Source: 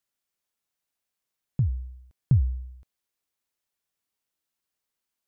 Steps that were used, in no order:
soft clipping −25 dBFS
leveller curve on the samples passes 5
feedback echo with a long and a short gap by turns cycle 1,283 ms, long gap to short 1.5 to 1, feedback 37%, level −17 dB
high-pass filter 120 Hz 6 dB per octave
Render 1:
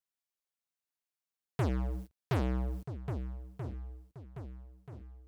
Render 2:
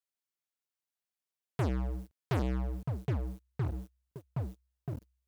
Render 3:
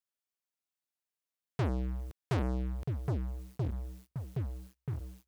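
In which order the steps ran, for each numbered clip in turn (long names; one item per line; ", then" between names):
leveller curve on the samples, then feedback echo with a long and a short gap by turns, then soft clipping, then high-pass filter
feedback echo with a long and a short gap by turns, then leveller curve on the samples, then soft clipping, then high-pass filter
feedback echo with a long and a short gap by turns, then soft clipping, then leveller curve on the samples, then high-pass filter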